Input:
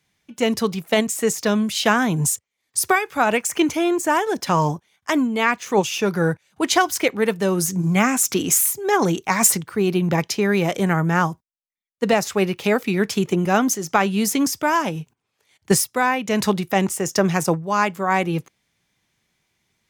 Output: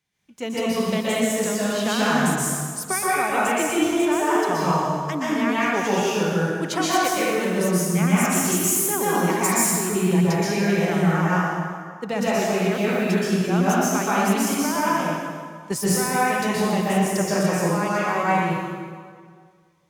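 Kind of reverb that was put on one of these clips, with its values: plate-style reverb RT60 1.9 s, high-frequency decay 0.75×, pre-delay 110 ms, DRR -8.5 dB; trim -10.5 dB

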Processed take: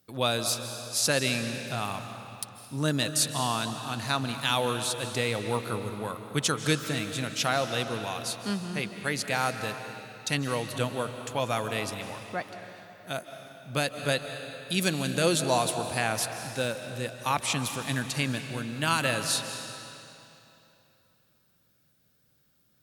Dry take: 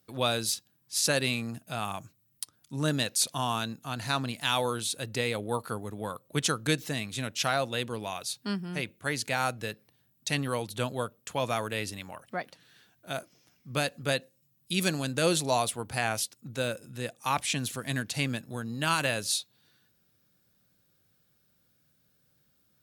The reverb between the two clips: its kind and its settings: algorithmic reverb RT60 3 s, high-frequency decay 0.9×, pre-delay 115 ms, DRR 7.5 dB; trim +1 dB

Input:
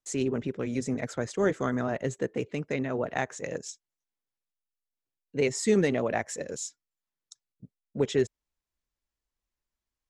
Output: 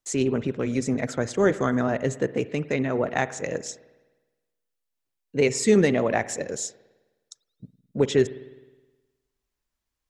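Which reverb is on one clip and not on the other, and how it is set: spring tank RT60 1.2 s, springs 52 ms, chirp 65 ms, DRR 15.5 dB; trim +5 dB

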